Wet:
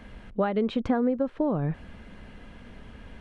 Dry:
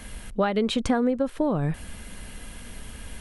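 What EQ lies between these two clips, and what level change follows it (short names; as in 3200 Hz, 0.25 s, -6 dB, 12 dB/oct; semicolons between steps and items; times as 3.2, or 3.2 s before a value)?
tape spacing loss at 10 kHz 31 dB; low shelf 70 Hz -9 dB; 0.0 dB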